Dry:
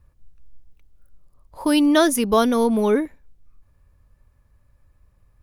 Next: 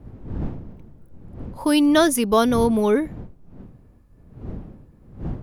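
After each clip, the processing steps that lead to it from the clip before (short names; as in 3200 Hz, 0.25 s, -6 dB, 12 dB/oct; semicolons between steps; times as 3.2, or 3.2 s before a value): wind noise 180 Hz -35 dBFS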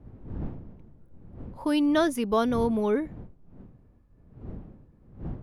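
high shelf 5200 Hz -11.5 dB; gain -6.5 dB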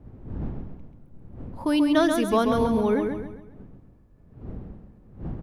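feedback echo 0.135 s, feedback 39%, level -5.5 dB; gain +2 dB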